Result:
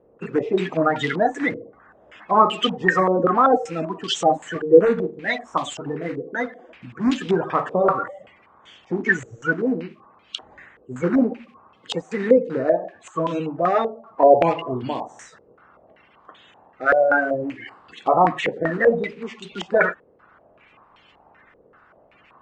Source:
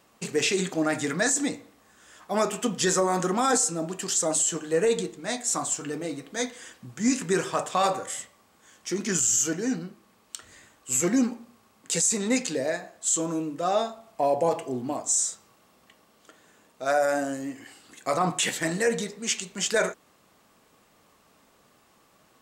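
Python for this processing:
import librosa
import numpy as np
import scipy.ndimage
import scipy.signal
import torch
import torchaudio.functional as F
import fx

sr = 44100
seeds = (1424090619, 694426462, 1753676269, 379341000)

y = fx.spec_quant(x, sr, step_db=30)
y = fx.filter_held_lowpass(y, sr, hz=5.2, low_hz=480.0, high_hz=3200.0)
y = y * librosa.db_to_amplitude(4.0)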